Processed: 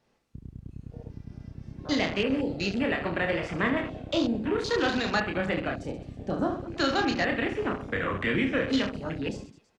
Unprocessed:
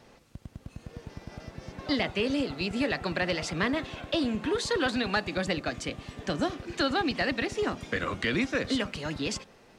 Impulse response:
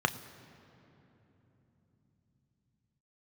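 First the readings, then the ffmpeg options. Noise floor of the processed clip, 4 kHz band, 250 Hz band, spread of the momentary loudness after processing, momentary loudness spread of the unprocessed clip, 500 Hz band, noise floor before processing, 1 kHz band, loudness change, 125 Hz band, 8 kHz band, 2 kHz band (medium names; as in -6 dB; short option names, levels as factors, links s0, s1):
-66 dBFS, -1.0 dB, +2.0 dB, 18 LU, 17 LU, +2.0 dB, -57 dBFS, +2.0 dB, +1.5 dB, +2.0 dB, -5.0 dB, +1.5 dB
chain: -af "aecho=1:1:30|72|130.8|213.1|328.4:0.631|0.398|0.251|0.158|0.1,afwtdn=0.02"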